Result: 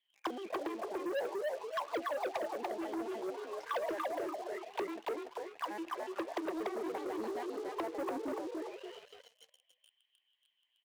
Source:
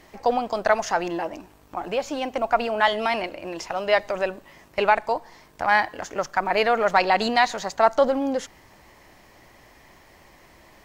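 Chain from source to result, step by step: pitch shift switched off and on +8 st, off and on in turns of 75 ms; auto-wah 330–3400 Hz, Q 18, down, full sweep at -22 dBFS; bass shelf 450 Hz +4 dB; band-stop 1.3 kHz, Q 5.3; frequency-shifting echo 289 ms, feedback 37%, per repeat +46 Hz, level -3 dB; level-controlled noise filter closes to 2.1 kHz, open at -36 dBFS; waveshaping leveller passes 3; tilt EQ +2.5 dB/octave; trim -4 dB

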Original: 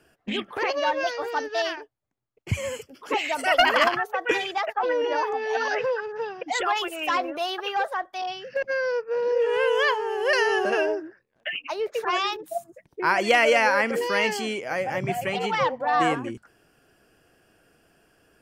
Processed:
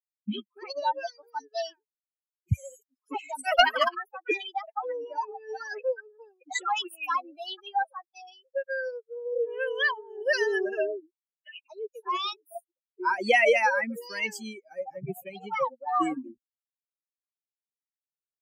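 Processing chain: expander on every frequency bin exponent 3; trim +3 dB

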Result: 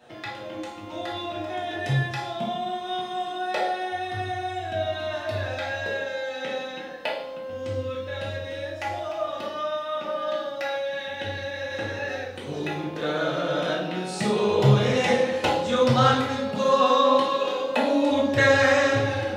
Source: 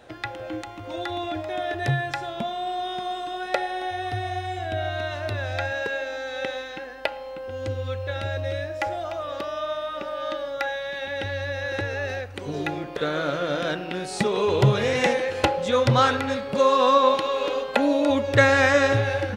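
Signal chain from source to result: high-pass 96 Hz; reverberation RT60 0.85 s, pre-delay 3 ms, DRR -6.5 dB; trim -8 dB

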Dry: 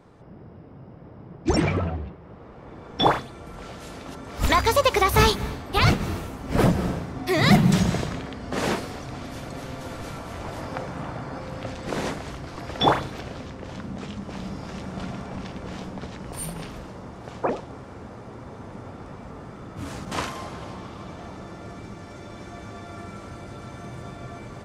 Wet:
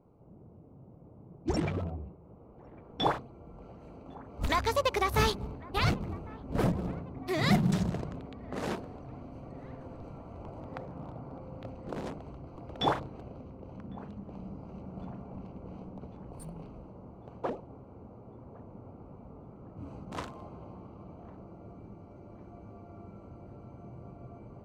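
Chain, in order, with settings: local Wiener filter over 25 samples; feedback echo behind a band-pass 1102 ms, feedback 51%, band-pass 1 kHz, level -21.5 dB; trim -8.5 dB

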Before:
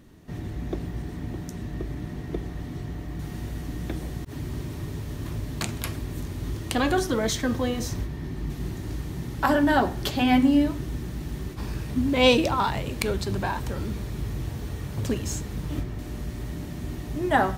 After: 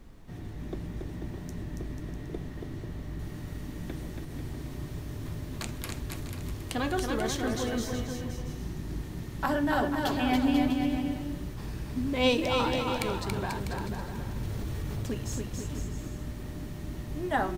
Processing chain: added noise brown -42 dBFS; bouncing-ball echo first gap 280 ms, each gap 0.75×, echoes 5; 14.36–15.03 s: level flattener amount 70%; trim -7 dB

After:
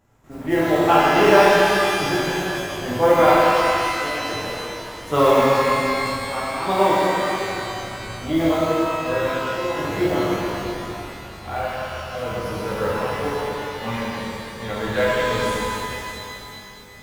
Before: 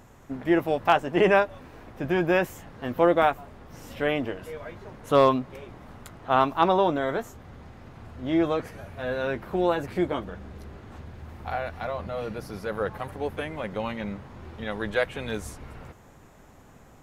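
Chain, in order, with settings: trance gate ".xxxxx..x." 63 bpm -12 dB; modulation noise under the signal 27 dB; pitch-shifted reverb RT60 3 s, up +12 st, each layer -8 dB, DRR -9 dB; trim -2.5 dB

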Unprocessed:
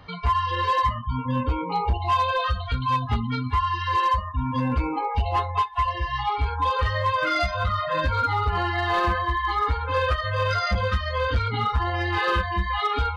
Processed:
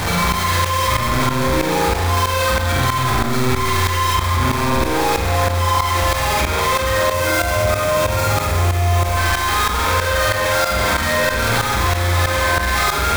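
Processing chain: one-bit comparator; band-stop 2.9 kHz, Q 8.7; flutter echo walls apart 8.1 m, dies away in 0.81 s; spring tank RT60 1.9 s, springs 34 ms, chirp 35 ms, DRR 0 dB; tremolo saw up 3.1 Hz, depth 85%; 7.13–9.17 s: fifteen-band graphic EQ 100 Hz +8 dB, 1.6 kHz -5 dB, 4 kHz -4 dB; level flattener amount 70%

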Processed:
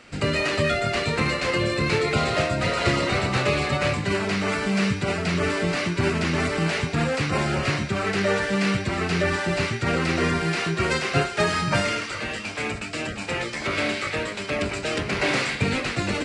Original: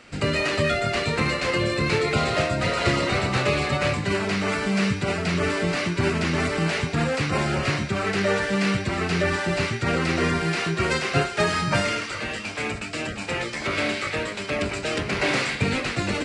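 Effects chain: rattle on loud lows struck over -22 dBFS, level -29 dBFS

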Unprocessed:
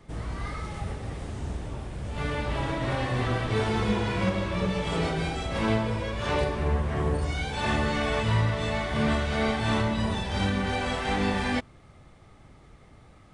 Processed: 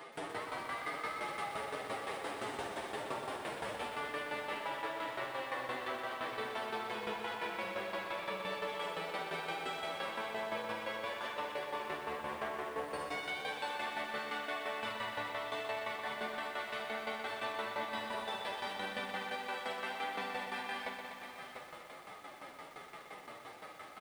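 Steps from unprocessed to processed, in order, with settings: high-pass 550 Hz 12 dB/octave; peaking EQ 6.5 kHz -10.5 dB 0.84 oct; compression 2.5:1, threshold -48 dBFS, peak gain reduction 14.5 dB; peak limiter -42.5 dBFS, peak gain reduction 10 dB; time stretch by phase-locked vocoder 1.8×; tremolo saw down 5.8 Hz, depth 90%; doubling 47 ms -10.5 dB; delay 698 ms -10 dB; bit-crushed delay 123 ms, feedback 80%, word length 12-bit, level -7 dB; trim +13.5 dB

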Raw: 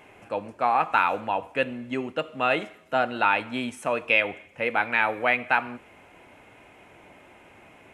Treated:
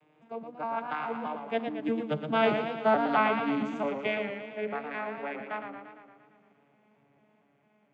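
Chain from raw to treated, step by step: vocoder on a broken chord bare fifth, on D3, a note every 216 ms; Doppler pass-by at 2.78 s, 13 m/s, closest 9 m; modulated delay 115 ms, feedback 63%, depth 113 cents, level -7 dB

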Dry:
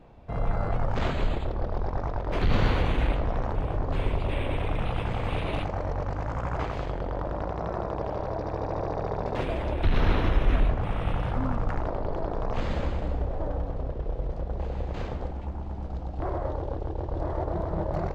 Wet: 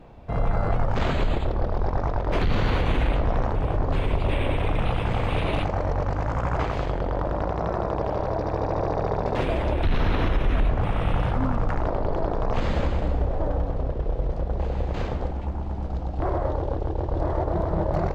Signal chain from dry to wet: peak limiter -18.5 dBFS, peak gain reduction 7.5 dB; trim +5 dB

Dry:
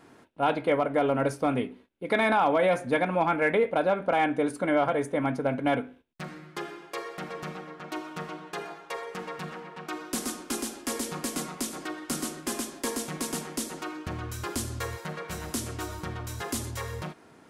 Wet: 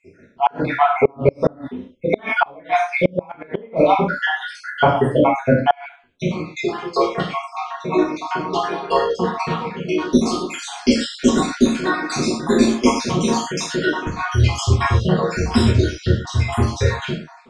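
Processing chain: random holes in the spectrogram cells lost 69%; low-pass 5.9 kHz 24 dB/octave; bass shelf 480 Hz +5.5 dB; gated-style reverb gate 160 ms falling, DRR -7.5 dB; inverted gate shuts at -9 dBFS, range -31 dB; level rider

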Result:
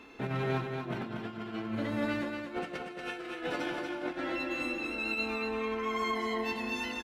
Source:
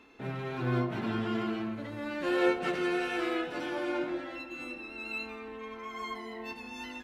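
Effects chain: compressor with a negative ratio -37 dBFS, ratio -0.5; on a send: feedback delay 235 ms, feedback 31%, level -5 dB; on the sum: trim +1.5 dB

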